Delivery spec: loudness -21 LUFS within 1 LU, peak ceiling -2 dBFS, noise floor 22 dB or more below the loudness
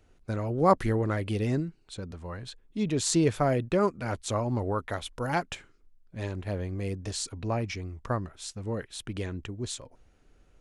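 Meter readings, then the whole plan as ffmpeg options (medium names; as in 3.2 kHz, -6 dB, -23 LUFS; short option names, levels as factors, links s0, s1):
loudness -30.5 LUFS; peak level -9.0 dBFS; loudness target -21.0 LUFS
-> -af "volume=2.99,alimiter=limit=0.794:level=0:latency=1"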